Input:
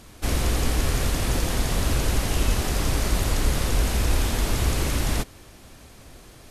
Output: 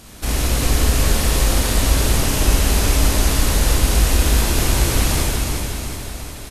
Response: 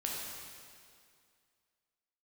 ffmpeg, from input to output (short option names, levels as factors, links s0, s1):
-filter_complex "[0:a]highshelf=f=5200:g=5.5,asplit=2[s0][s1];[s1]acompressor=threshold=0.0398:ratio=6,volume=0.944[s2];[s0][s2]amix=inputs=2:normalize=0,aecho=1:1:363|726|1089|1452|1815|2178|2541:0.501|0.276|0.152|0.0834|0.0459|0.0252|0.0139[s3];[1:a]atrim=start_sample=2205[s4];[s3][s4]afir=irnorm=-1:irlink=0,volume=0.891"